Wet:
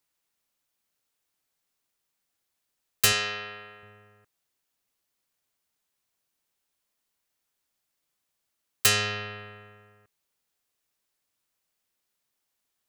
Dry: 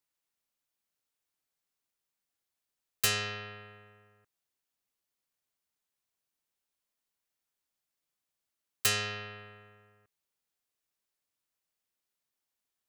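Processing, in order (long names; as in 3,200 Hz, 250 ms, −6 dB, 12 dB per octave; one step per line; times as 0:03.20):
0:03.12–0:03.83: high-pass filter 390 Hz 6 dB per octave
level +6.5 dB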